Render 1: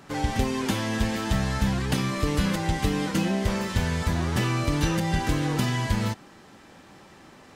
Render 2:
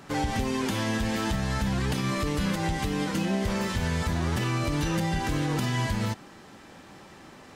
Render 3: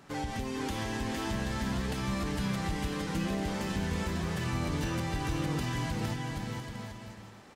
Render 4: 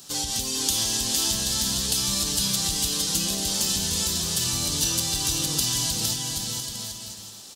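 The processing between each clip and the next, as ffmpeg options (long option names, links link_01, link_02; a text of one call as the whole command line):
ffmpeg -i in.wav -af "alimiter=limit=-20dB:level=0:latency=1:release=100,volume=1.5dB" out.wav
ffmpeg -i in.wav -af "aecho=1:1:460|782|1007|1165|1276:0.631|0.398|0.251|0.158|0.1,volume=-7.5dB" out.wav
ffmpeg -i in.wav -af "aexciter=amount=14.3:drive=3.9:freq=3200,volume=-1dB" out.wav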